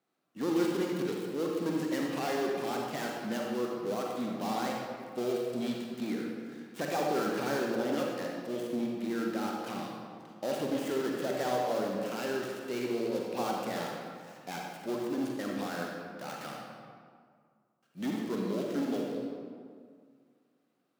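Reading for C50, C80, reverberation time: -0.5 dB, 1.5 dB, 2.0 s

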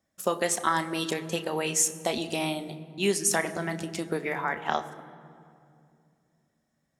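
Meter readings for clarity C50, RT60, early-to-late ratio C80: 14.0 dB, 2.5 s, 14.5 dB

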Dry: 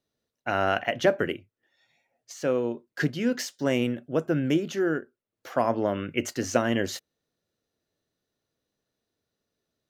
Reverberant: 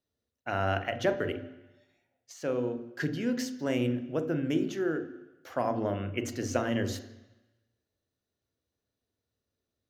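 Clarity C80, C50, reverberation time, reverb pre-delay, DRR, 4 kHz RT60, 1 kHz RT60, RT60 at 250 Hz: 15.0 dB, 12.5 dB, 1.0 s, 34 ms, 9.0 dB, 1.1 s, 1.1 s, 0.95 s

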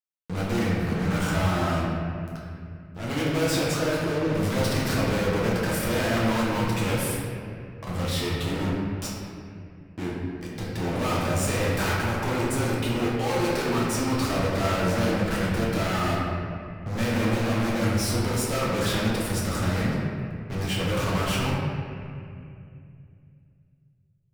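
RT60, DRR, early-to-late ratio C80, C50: 2.5 s, -6.0 dB, 0.5 dB, -1.5 dB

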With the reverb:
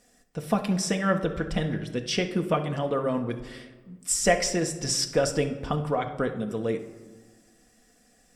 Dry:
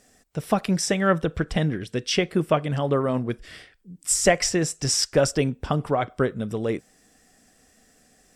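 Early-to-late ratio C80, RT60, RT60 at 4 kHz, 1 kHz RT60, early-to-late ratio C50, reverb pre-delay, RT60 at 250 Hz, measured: 13.5 dB, 1.5 s, 0.70 s, 1.4 s, 10.5 dB, 4 ms, 1.8 s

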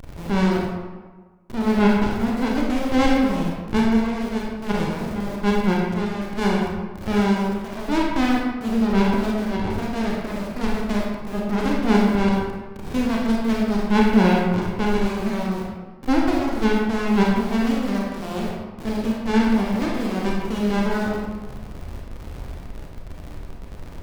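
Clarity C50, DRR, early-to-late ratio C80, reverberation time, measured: 0.0 dB, -3.0 dB, 2.5 dB, 1.4 s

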